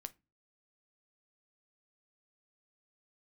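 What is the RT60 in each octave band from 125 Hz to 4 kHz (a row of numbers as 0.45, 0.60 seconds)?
0.50, 0.40, 0.25, 0.25, 0.20, 0.20 seconds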